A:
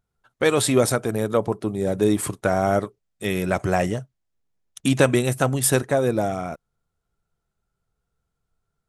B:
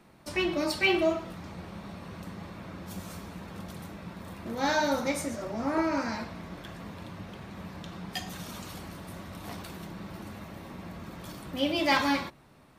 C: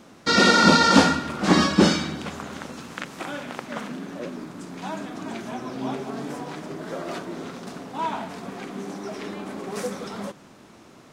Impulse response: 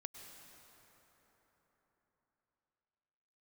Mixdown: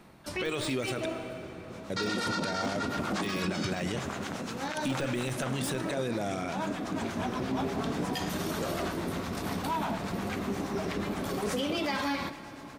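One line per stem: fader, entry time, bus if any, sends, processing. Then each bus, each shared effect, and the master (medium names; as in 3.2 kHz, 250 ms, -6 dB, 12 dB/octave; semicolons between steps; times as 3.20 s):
-3.5 dB, 0.00 s, muted 1.06–1.90 s, bus A, send -8.5 dB, frequency weighting D; de-esser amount 55%; bass shelf 220 Hz +8.5 dB
+3.0 dB, 0.00 s, bus A, send -10.5 dB, auto duck -16 dB, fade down 0.95 s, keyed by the first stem
+3.0 dB, 1.70 s, no bus, no send, harmonic tremolo 8.4 Hz, depth 70%, crossover 680 Hz; compression 4:1, threshold -26 dBFS, peak gain reduction 12 dB
bus A: 0.0 dB, compression, threshold -26 dBFS, peak gain reduction 11 dB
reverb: on, RT60 4.3 s, pre-delay 93 ms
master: peak limiter -22.5 dBFS, peak gain reduction 12.5 dB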